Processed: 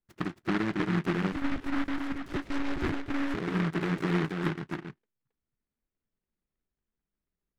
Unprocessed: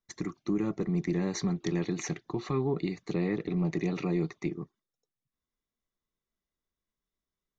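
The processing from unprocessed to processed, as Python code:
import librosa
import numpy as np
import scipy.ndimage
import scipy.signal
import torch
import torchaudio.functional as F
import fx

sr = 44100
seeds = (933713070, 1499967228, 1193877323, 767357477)

p1 = fx.rider(x, sr, range_db=4, speed_s=2.0)
p2 = scipy.signal.lfilter(np.full(30, 1.0 / 30), 1.0, p1)
p3 = p2 + fx.echo_single(p2, sr, ms=271, db=-4.0, dry=0)
p4 = fx.lpc_monotone(p3, sr, seeds[0], pitch_hz=280.0, order=10, at=(1.32, 3.35))
y = fx.noise_mod_delay(p4, sr, seeds[1], noise_hz=1300.0, depth_ms=0.23)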